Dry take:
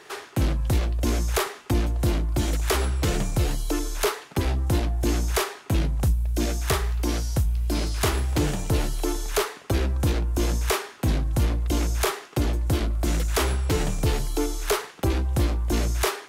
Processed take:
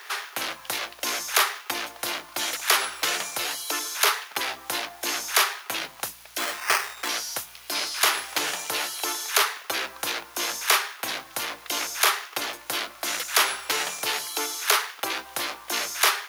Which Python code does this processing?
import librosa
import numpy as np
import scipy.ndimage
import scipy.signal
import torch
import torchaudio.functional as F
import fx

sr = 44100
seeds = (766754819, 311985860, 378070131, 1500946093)

y = fx.delta_hold(x, sr, step_db=-49.5)
y = fx.peak_eq(y, sr, hz=7900.0, db=-6.5, octaves=0.31)
y = fx.sample_hold(y, sr, seeds[0], rate_hz=3700.0, jitter_pct=0, at=(6.38, 7.09))
y = scipy.signal.sosfilt(scipy.signal.butter(2, 1100.0, 'highpass', fs=sr, output='sos'), y)
y = y * librosa.db_to_amplitude(8.0)